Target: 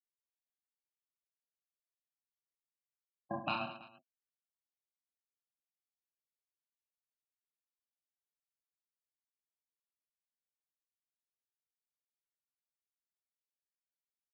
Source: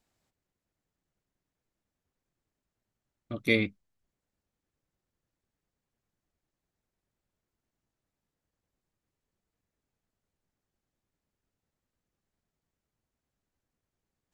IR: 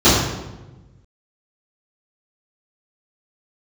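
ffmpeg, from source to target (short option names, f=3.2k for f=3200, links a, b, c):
-filter_complex "[0:a]afftfilt=real='re*gte(hypot(re,im),0.0316)':imag='im*gte(hypot(re,im),0.0316)':win_size=1024:overlap=0.75,lowshelf=f=400:g=-6,acompressor=threshold=-45dB:ratio=5,aeval=exprs='val(0)*sin(2*PI*720*n/s)':c=same,afreqshift=-270,highpass=170,lowpass=6.9k,asplit=2[a][b];[b]aecho=0:1:30|72|130.8|213.1|328.4:0.631|0.398|0.251|0.158|0.1[c];[a][c]amix=inputs=2:normalize=0,volume=11dB"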